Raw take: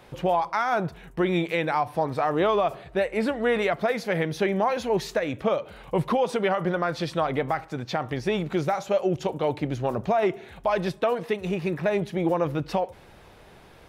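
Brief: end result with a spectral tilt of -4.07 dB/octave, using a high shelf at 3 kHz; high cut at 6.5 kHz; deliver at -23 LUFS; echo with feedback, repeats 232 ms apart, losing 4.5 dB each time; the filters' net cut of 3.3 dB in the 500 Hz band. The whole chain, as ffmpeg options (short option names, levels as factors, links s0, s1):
-af "lowpass=6500,equalizer=f=500:t=o:g=-4.5,highshelf=f=3000:g=6.5,aecho=1:1:232|464|696|928|1160|1392|1624|1856|2088:0.596|0.357|0.214|0.129|0.0772|0.0463|0.0278|0.0167|0.01,volume=1.33"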